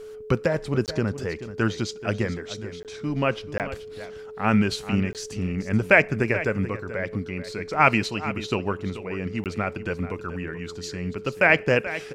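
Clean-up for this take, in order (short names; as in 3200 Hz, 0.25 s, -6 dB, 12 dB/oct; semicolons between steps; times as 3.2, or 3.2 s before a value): notch 430 Hz, Q 30; interpolate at 0.86/2.83/3.58/5.13/9.44, 18 ms; inverse comb 0.432 s -13.5 dB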